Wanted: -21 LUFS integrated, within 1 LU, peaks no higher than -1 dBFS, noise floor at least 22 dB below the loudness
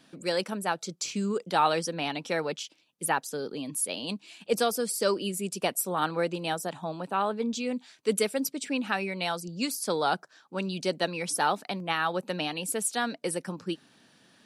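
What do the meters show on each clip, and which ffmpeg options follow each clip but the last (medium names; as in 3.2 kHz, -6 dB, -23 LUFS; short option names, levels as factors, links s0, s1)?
loudness -30.0 LUFS; peak level -11.0 dBFS; loudness target -21.0 LUFS
-> -af "volume=2.82"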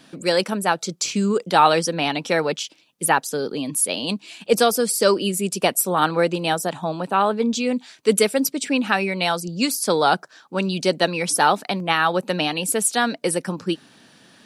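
loudness -21.0 LUFS; peak level -2.0 dBFS; noise floor -55 dBFS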